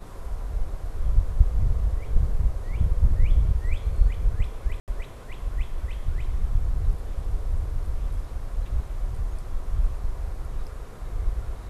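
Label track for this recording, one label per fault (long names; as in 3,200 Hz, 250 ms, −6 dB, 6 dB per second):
4.800000	4.880000	drop-out 78 ms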